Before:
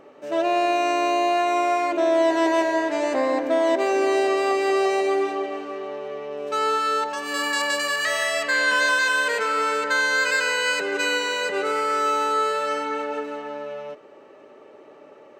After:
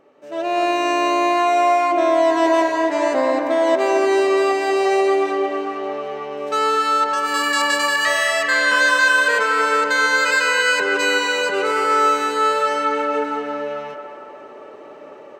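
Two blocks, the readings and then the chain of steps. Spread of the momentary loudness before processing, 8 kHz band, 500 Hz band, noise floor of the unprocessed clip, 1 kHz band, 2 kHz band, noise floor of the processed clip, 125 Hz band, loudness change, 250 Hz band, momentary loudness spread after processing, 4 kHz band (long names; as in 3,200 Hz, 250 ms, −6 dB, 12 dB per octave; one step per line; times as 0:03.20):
11 LU, +3.5 dB, +4.0 dB, −48 dBFS, +5.0 dB, +5.0 dB, −39 dBFS, can't be measured, +4.5 dB, +3.5 dB, 10 LU, +4.0 dB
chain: automatic gain control gain up to 13 dB
on a send: feedback echo with a band-pass in the loop 224 ms, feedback 67%, band-pass 990 Hz, level −4.5 dB
on the sum: level −6.5 dB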